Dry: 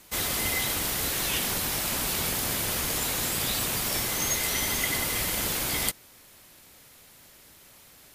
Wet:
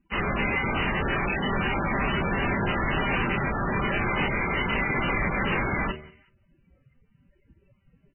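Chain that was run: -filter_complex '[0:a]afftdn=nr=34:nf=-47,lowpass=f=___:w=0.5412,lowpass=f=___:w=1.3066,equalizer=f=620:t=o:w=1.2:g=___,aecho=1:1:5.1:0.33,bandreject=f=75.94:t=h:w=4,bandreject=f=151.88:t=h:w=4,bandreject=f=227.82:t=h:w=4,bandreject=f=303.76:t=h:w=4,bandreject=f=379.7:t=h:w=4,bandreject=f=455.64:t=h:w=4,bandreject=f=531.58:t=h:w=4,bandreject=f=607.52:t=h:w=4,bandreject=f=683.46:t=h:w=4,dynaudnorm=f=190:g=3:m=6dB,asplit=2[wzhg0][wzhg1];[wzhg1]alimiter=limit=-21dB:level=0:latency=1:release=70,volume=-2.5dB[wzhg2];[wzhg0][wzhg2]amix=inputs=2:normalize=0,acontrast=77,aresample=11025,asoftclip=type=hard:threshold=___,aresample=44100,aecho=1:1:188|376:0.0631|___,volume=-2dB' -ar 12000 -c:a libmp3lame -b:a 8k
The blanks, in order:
3.9k, 3.9k, -5, -20.5dB, 0.0202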